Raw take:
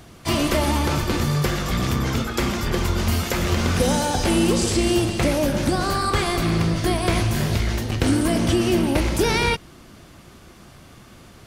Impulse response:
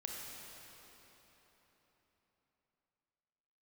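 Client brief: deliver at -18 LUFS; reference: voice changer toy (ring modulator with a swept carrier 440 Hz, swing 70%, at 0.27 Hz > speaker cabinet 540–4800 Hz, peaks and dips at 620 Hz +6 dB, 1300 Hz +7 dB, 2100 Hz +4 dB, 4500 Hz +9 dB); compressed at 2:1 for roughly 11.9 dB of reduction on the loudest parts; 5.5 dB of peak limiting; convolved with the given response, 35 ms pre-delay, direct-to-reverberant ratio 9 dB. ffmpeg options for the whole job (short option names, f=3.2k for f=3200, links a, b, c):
-filter_complex "[0:a]acompressor=threshold=-38dB:ratio=2,alimiter=level_in=0.5dB:limit=-24dB:level=0:latency=1,volume=-0.5dB,asplit=2[a][b];[1:a]atrim=start_sample=2205,adelay=35[c];[b][c]afir=irnorm=-1:irlink=0,volume=-8.5dB[d];[a][d]amix=inputs=2:normalize=0,aeval=exprs='val(0)*sin(2*PI*440*n/s+440*0.7/0.27*sin(2*PI*0.27*n/s))':c=same,highpass=540,equalizer=f=620:t=q:w=4:g=6,equalizer=f=1.3k:t=q:w=4:g=7,equalizer=f=2.1k:t=q:w=4:g=4,equalizer=f=4.5k:t=q:w=4:g=9,lowpass=f=4.8k:w=0.5412,lowpass=f=4.8k:w=1.3066,volume=17.5dB"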